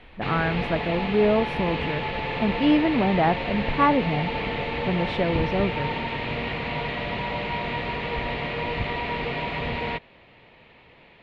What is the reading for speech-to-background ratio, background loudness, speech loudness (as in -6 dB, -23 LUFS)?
3.5 dB, -28.5 LUFS, -25.0 LUFS